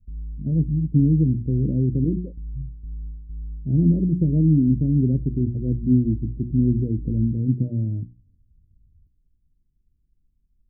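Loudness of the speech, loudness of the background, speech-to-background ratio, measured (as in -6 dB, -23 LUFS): -21.5 LUFS, -37.0 LUFS, 15.5 dB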